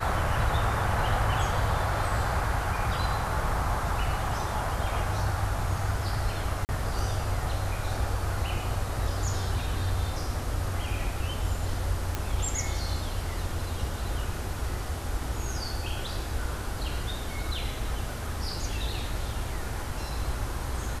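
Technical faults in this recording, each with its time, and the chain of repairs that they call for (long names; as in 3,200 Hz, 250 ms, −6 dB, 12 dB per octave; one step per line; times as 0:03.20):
0:06.65–0:06.69: drop-out 39 ms
0:12.15: click −14 dBFS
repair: click removal
repair the gap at 0:06.65, 39 ms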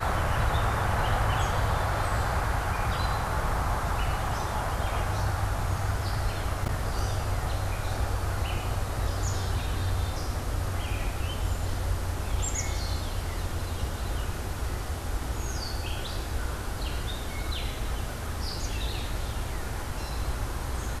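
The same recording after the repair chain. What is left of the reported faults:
none of them is left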